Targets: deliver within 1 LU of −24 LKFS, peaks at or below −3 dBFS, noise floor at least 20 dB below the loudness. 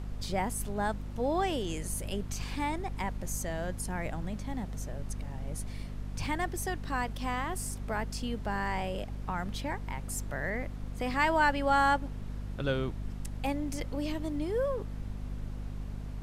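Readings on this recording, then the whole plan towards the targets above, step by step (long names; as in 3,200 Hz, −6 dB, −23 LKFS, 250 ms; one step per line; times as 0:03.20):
mains hum 50 Hz; hum harmonics up to 250 Hz; level of the hum −36 dBFS; background noise floor −40 dBFS; target noise floor −54 dBFS; integrated loudness −34.0 LKFS; sample peak −14.0 dBFS; target loudness −24.0 LKFS
→ hum removal 50 Hz, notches 5
noise reduction from a noise print 14 dB
level +10 dB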